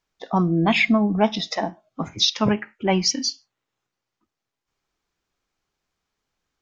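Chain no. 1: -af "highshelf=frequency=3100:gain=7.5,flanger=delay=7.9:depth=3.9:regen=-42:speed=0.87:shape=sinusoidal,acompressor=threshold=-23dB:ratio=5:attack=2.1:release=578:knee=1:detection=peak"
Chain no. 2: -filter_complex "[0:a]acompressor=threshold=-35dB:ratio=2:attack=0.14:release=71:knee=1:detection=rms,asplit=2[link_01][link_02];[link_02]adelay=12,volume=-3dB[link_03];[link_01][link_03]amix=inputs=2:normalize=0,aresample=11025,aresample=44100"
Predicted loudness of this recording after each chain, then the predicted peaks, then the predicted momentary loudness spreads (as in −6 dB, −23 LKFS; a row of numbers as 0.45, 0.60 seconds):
−30.0, −31.5 LKFS; −15.5, −18.5 dBFS; 10, 11 LU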